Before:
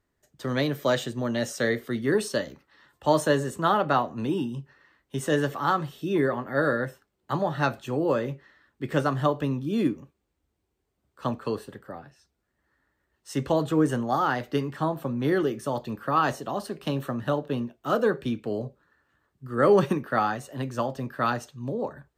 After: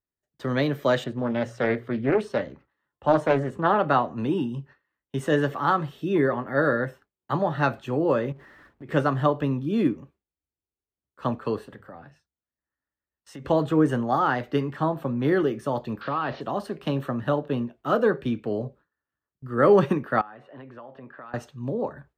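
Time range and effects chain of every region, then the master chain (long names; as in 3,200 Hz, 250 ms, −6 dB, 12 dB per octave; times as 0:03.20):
0:01.04–0:03.79: high-shelf EQ 3,500 Hz −12 dB + hum removal 59.89 Hz, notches 2 + highs frequency-modulated by the lows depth 0.38 ms
0:08.32–0:08.89: converter with a step at zero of −45.5 dBFS + high-shelf EQ 2,000 Hz −11 dB + downward compressor 3 to 1, threshold −43 dBFS
0:11.67–0:13.45: parametric band 380 Hz −5.5 dB 0.25 octaves + mains-hum notches 50/100/150 Hz + downward compressor 4 to 1, threshold −40 dBFS
0:16.01–0:16.41: spike at every zero crossing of −24 dBFS + Butterworth low-pass 4,400 Hz 48 dB per octave + downward compressor 2.5 to 1, threshold −27 dBFS
0:20.21–0:21.34: high-pass filter 500 Hz 6 dB per octave + downward compressor 5 to 1, threshold −40 dBFS + high-frequency loss of the air 420 metres
whole clip: noise gate with hold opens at −45 dBFS; bass and treble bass 0 dB, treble −10 dB; level +2 dB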